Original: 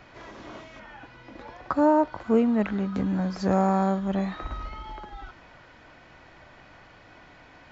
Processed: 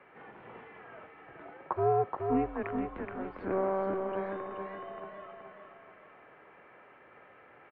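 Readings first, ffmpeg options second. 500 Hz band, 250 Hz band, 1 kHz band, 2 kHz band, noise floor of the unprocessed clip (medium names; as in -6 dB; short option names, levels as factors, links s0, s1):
-4.5 dB, -12.5 dB, -6.0 dB, -6.5 dB, -52 dBFS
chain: -af "highpass=f=410:t=q:w=0.5412,highpass=f=410:t=q:w=1.307,lowpass=f=2800:t=q:w=0.5176,lowpass=f=2800:t=q:w=0.7071,lowpass=f=2800:t=q:w=1.932,afreqshift=-190,aecho=1:1:425|850|1275|1700|2125:0.562|0.236|0.0992|0.0417|0.0175,volume=0.562"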